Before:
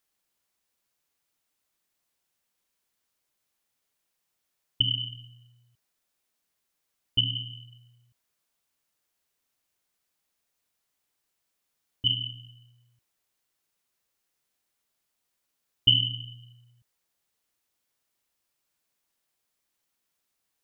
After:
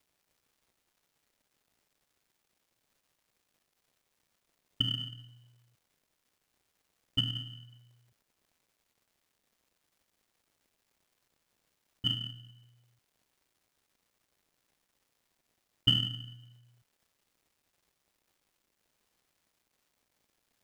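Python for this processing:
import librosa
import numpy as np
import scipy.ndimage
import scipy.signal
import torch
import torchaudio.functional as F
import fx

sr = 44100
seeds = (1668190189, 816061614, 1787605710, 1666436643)

p1 = fx.dmg_crackle(x, sr, seeds[0], per_s=560.0, level_db=-57.0)
p2 = fx.sample_hold(p1, sr, seeds[1], rate_hz=1600.0, jitter_pct=0)
p3 = p1 + F.gain(torch.from_numpy(p2), -10.5).numpy()
y = F.gain(torch.from_numpy(p3), -6.0).numpy()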